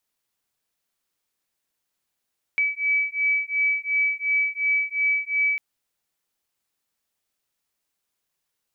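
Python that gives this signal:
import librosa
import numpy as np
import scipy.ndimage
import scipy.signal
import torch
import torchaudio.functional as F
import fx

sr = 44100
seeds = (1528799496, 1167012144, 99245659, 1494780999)

y = fx.two_tone_beats(sr, length_s=3.0, hz=2290.0, beat_hz=2.8, level_db=-23.5)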